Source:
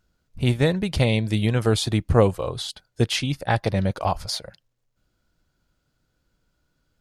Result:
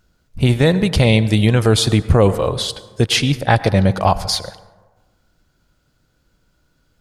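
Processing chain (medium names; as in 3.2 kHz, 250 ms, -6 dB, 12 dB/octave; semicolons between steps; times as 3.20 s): on a send at -16 dB: reverberation RT60 1.3 s, pre-delay 88 ms; on the sum: loudness maximiser +9.5 dB; trim -1 dB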